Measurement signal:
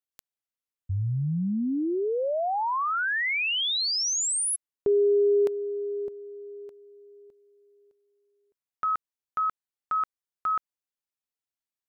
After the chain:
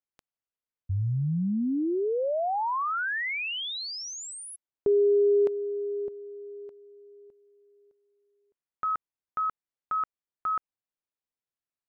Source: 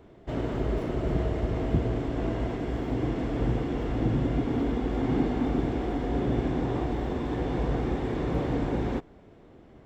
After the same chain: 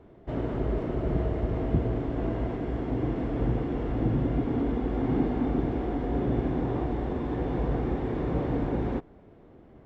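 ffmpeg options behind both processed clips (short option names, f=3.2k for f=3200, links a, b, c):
-af "lowpass=f=1.7k:p=1"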